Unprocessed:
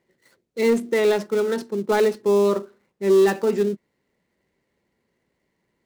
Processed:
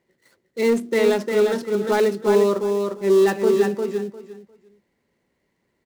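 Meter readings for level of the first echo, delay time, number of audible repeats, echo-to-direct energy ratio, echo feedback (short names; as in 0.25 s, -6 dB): -4.5 dB, 0.352 s, 3, -4.5 dB, 19%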